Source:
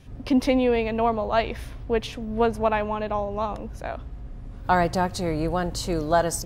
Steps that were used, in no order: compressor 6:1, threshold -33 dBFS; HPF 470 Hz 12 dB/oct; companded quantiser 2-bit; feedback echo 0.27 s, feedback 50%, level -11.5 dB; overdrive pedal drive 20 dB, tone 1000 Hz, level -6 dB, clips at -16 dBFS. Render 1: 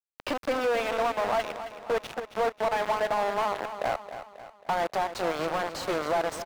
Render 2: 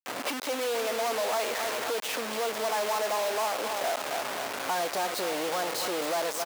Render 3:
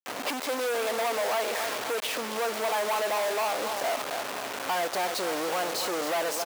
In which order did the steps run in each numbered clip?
compressor > HPF > companded quantiser > overdrive pedal > feedback echo; overdrive pedal > feedback echo > compressor > companded quantiser > HPF; compressor > overdrive pedal > feedback echo > companded quantiser > HPF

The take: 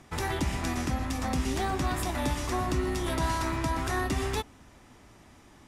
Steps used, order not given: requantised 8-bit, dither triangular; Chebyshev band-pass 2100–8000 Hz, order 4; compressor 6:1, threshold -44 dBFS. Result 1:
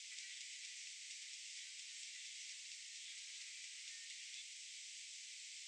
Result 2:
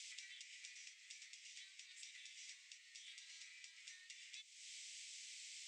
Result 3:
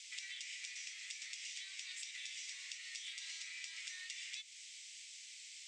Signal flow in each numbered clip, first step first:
compressor > requantised > Chebyshev band-pass; requantised > compressor > Chebyshev band-pass; requantised > Chebyshev band-pass > compressor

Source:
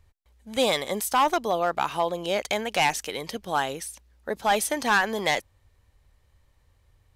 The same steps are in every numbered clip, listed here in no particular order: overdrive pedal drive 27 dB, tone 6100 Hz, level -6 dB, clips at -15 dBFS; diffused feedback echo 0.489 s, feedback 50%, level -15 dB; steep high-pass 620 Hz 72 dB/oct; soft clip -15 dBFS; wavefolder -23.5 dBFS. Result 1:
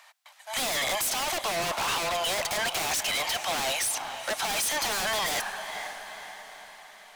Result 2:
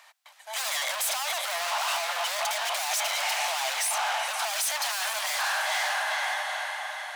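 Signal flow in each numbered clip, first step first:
steep high-pass > overdrive pedal > diffused feedback echo > wavefolder > soft clip; diffused feedback echo > soft clip > overdrive pedal > wavefolder > steep high-pass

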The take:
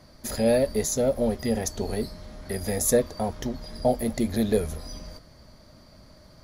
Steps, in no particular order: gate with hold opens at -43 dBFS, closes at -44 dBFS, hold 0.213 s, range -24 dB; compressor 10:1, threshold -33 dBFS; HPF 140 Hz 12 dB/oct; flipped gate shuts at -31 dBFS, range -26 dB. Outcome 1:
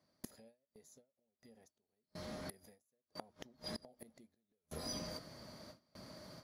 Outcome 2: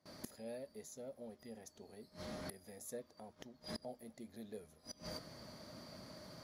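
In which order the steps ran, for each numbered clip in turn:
HPF > compressor > flipped gate > gate with hold; gate with hold > HPF > flipped gate > compressor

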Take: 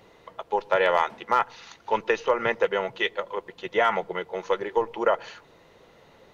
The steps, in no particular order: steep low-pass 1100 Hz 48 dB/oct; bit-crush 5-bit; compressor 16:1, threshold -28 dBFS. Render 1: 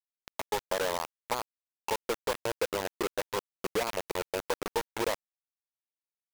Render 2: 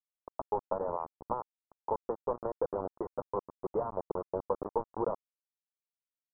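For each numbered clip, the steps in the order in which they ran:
steep low-pass > compressor > bit-crush; compressor > bit-crush > steep low-pass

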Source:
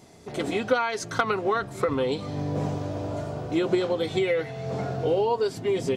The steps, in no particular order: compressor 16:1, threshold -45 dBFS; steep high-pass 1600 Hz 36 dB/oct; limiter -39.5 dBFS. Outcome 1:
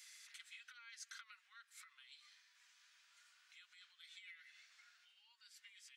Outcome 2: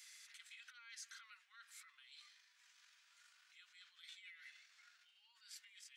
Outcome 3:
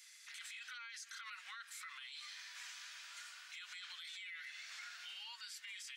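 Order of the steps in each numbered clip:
compressor > steep high-pass > limiter; limiter > compressor > steep high-pass; steep high-pass > limiter > compressor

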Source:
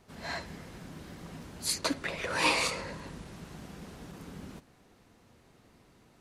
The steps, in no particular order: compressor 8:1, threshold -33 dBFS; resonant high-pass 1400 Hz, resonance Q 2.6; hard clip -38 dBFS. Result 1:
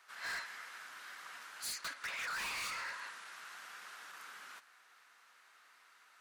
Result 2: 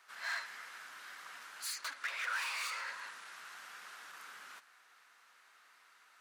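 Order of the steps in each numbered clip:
compressor > resonant high-pass > hard clip; compressor > hard clip > resonant high-pass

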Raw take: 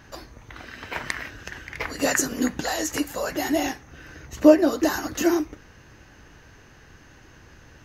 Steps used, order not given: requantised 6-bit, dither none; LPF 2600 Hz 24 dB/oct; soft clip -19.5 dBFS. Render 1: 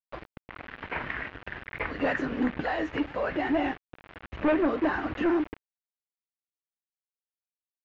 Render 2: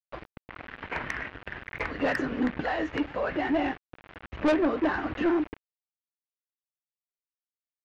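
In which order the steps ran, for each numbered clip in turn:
soft clip > requantised > LPF; requantised > LPF > soft clip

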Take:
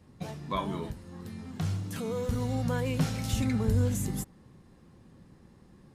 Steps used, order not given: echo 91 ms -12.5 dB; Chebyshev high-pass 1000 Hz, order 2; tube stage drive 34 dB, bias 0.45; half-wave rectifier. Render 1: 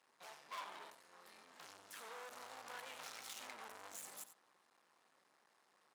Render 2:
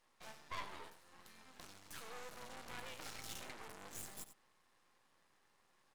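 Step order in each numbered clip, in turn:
tube stage > echo > half-wave rectifier > Chebyshev high-pass; tube stage > Chebyshev high-pass > half-wave rectifier > echo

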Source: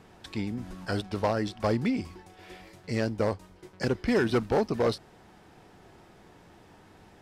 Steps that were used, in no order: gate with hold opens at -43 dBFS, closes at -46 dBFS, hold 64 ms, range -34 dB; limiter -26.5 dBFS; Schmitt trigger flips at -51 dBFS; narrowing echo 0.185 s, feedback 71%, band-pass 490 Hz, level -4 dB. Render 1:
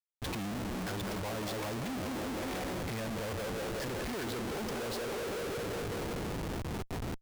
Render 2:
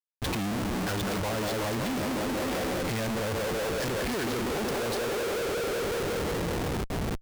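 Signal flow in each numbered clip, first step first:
limiter > narrowing echo > gate with hold > Schmitt trigger; narrowing echo > gate with hold > Schmitt trigger > limiter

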